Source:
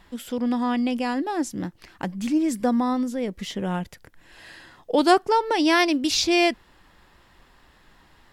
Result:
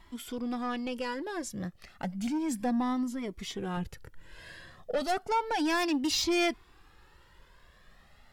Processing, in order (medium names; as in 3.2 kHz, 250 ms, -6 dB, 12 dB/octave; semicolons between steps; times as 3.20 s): 3.77–4.93 s: bass shelf 350 Hz +6.5 dB; saturation -19 dBFS, distortion -10 dB; Shepard-style flanger rising 0.32 Hz